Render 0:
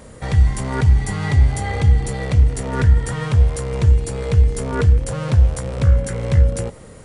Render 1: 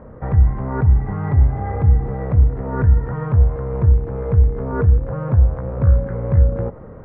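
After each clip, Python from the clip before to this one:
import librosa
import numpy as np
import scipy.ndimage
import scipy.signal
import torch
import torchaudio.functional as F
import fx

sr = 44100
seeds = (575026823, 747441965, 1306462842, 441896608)

y = scipy.signal.sosfilt(scipy.signal.butter(4, 1400.0, 'lowpass', fs=sr, output='sos'), x)
y = fx.rider(y, sr, range_db=4, speed_s=0.5)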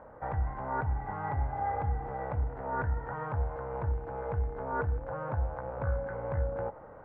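y = fx.low_shelf_res(x, sr, hz=450.0, db=-11.0, q=1.5)
y = fx.small_body(y, sr, hz=(300.0, 850.0, 1500.0), ring_ms=45, db=9)
y = y * librosa.db_to_amplitude(-7.5)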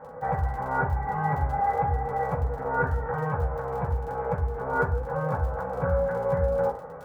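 y = fx.dmg_crackle(x, sr, seeds[0], per_s=32.0, level_db=-41.0)
y = fx.rev_fdn(y, sr, rt60_s=0.36, lf_ratio=0.75, hf_ratio=0.5, size_ms=36.0, drr_db=-6.5)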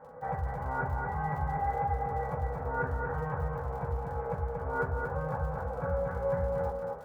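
y = x + 10.0 ** (-4.5 / 20.0) * np.pad(x, (int(234 * sr / 1000.0), 0))[:len(x)]
y = y * librosa.db_to_amplitude(-7.0)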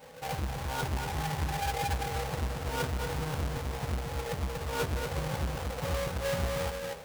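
y = fx.halfwave_hold(x, sr)
y = y * librosa.db_to_amplitude(-4.5)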